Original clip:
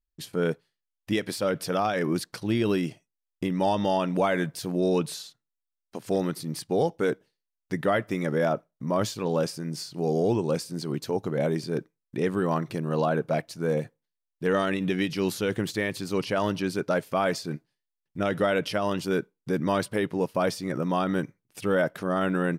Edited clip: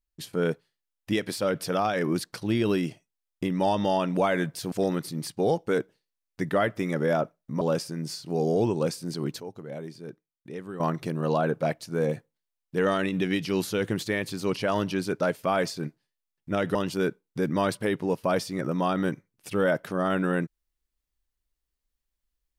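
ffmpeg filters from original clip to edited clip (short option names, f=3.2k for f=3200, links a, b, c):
-filter_complex "[0:a]asplit=6[a][b][c][d][e][f];[a]atrim=end=4.722[g];[b]atrim=start=6.038:end=8.932[h];[c]atrim=start=9.288:end=11.082[i];[d]atrim=start=11.078:end=12.482,asetpts=PTS-STARTPTS,volume=-11.5dB[j];[e]atrim=start=12.478:end=18.432[k];[f]atrim=start=18.858[l];[g][h]acrossfade=d=0.004:c1=hsin:c2=hsin[m];[m][i]acrossfade=d=0.004:c1=hsin:c2=hsin[n];[n][j]acrossfade=d=0.004:c1=hsin:c2=hsin[o];[o][k]acrossfade=d=0.004:c1=hsin:c2=hsin[p];[p][l]acrossfade=d=0.004:c1=hsin:c2=hsin"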